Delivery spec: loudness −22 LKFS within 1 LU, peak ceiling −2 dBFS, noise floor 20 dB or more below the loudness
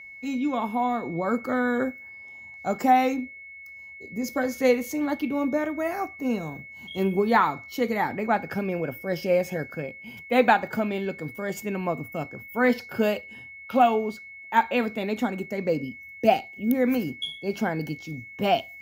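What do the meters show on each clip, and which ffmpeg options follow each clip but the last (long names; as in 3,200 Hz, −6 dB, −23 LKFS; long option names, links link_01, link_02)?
interfering tone 2,200 Hz; level of the tone −41 dBFS; integrated loudness −26.0 LKFS; sample peak −4.0 dBFS; target loudness −22.0 LKFS
→ -af "bandreject=frequency=2200:width=30"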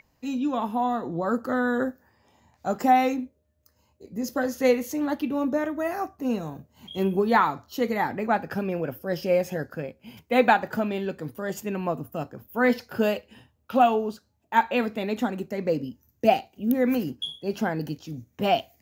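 interfering tone none found; integrated loudness −26.0 LKFS; sample peak −4.0 dBFS; target loudness −22.0 LKFS
→ -af "volume=4dB,alimiter=limit=-2dB:level=0:latency=1"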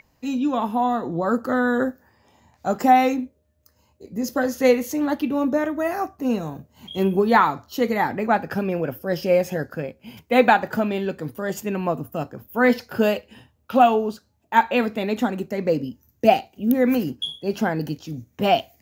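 integrated loudness −22.0 LKFS; sample peak −2.0 dBFS; background noise floor −65 dBFS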